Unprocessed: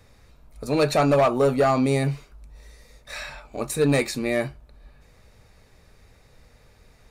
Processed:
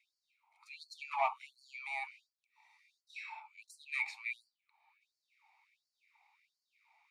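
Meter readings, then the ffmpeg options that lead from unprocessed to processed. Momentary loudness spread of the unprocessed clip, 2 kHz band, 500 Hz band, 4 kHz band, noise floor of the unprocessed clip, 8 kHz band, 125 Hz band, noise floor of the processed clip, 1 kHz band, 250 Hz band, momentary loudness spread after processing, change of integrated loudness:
17 LU, -9.0 dB, -28.5 dB, -18.0 dB, -57 dBFS, -25.5 dB, under -40 dB, under -85 dBFS, -13.0 dB, under -40 dB, 17 LU, -17.5 dB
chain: -filter_complex "[0:a]asplit=3[a][b][c];[a]bandpass=f=300:t=q:w=8,volume=0dB[d];[b]bandpass=f=870:t=q:w=8,volume=-6dB[e];[c]bandpass=f=2.24k:t=q:w=8,volume=-9dB[f];[d][e][f]amix=inputs=3:normalize=0,afftfilt=real='re*gte(b*sr/1024,620*pow(4200/620,0.5+0.5*sin(2*PI*1.4*pts/sr)))':imag='im*gte(b*sr/1024,620*pow(4200/620,0.5+0.5*sin(2*PI*1.4*pts/sr)))':win_size=1024:overlap=0.75,volume=7dB"

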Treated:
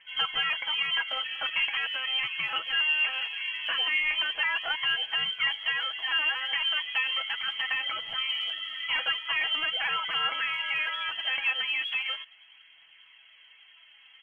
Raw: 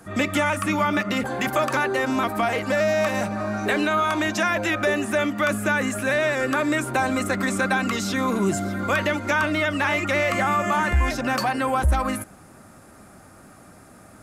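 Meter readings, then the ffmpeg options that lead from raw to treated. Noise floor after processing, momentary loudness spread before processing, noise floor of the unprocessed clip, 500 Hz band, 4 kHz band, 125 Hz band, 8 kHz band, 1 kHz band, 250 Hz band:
-57 dBFS, 3 LU, -48 dBFS, -26.0 dB, +8.0 dB, under -30 dB, under -30 dB, -13.0 dB, under -35 dB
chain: -af "highpass=120,lowpass=f=2.9k:t=q:w=0.5098,lowpass=f=2.9k:t=q:w=0.6013,lowpass=f=2.9k:t=q:w=0.9,lowpass=f=2.9k:t=q:w=2.563,afreqshift=-3400,aphaser=in_gain=1:out_gain=1:delay=4:decay=0.31:speed=0.39:type=triangular,aecho=1:1:6.1:0.55,volume=-8.5dB"

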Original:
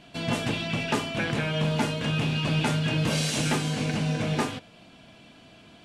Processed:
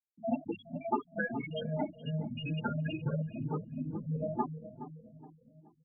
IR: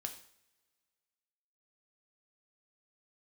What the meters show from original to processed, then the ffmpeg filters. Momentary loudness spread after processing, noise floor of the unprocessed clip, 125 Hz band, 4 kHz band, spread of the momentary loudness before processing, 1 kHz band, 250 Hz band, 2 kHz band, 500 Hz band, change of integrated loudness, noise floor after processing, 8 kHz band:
12 LU, -52 dBFS, -9.5 dB, -19.5 dB, 3 LU, -6.0 dB, -8.0 dB, -12.0 dB, -7.0 dB, -9.5 dB, -68 dBFS, under -40 dB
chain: -filter_complex "[0:a]afftfilt=real='re*pow(10,7/40*sin(2*PI*(0.68*log(max(b,1)*sr/1024/100)/log(2)-(2)*(pts-256)/sr)))':imag='im*pow(10,7/40*sin(2*PI*(0.68*log(max(b,1)*sr/1024/100)/log(2)-(2)*(pts-256)/sr)))':win_size=1024:overlap=0.75,acrossover=split=170 3400:gain=0.158 1 0.158[a][b][c];[a][b][c]amix=inputs=3:normalize=0,afftfilt=real='re*gte(hypot(re,im),0.158)':imag='im*gte(hypot(re,im),0.158)':win_size=1024:overlap=0.75,asubboost=boost=8.5:cutoff=86,bandreject=f=50:t=h:w=6,bandreject=f=100:t=h:w=6,bandreject=f=150:t=h:w=6,aexciter=amount=6.5:drive=9.1:freq=8.9k,asplit=2[d][e];[e]adelay=421,lowpass=f=1k:p=1,volume=-11dB,asplit=2[f][g];[g]adelay=421,lowpass=f=1k:p=1,volume=0.5,asplit=2[h][i];[i]adelay=421,lowpass=f=1k:p=1,volume=0.5,asplit=2[j][k];[k]adelay=421,lowpass=f=1k:p=1,volume=0.5,asplit=2[l][m];[m]adelay=421,lowpass=f=1k:p=1,volume=0.5[n];[f][h][j][l][n]amix=inputs=5:normalize=0[o];[d][o]amix=inputs=2:normalize=0,asplit=2[p][q];[q]adelay=5.2,afreqshift=2.9[r];[p][r]amix=inputs=2:normalize=1"

